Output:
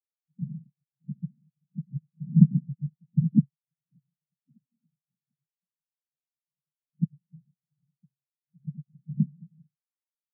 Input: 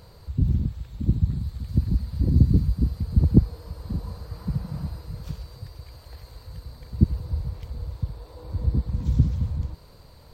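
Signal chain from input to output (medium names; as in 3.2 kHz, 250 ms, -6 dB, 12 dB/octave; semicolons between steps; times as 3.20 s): frequency shift +85 Hz; peaking EQ 380 Hz -8.5 dB 0.5 oct; spectral contrast expander 4:1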